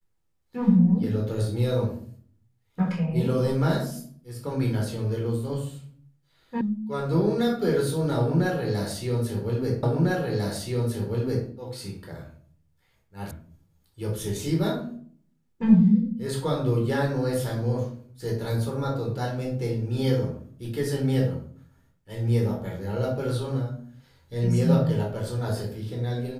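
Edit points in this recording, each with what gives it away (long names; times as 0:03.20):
0:06.61: cut off before it has died away
0:09.83: the same again, the last 1.65 s
0:13.31: cut off before it has died away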